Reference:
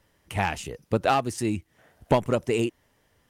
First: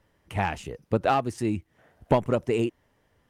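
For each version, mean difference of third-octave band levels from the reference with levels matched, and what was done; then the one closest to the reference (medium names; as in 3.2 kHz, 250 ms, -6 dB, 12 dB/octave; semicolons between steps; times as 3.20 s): 2.5 dB: treble shelf 3.1 kHz -9 dB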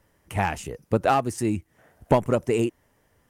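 1.5 dB: peaking EQ 3.7 kHz -7 dB 1.3 oct; trim +2 dB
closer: second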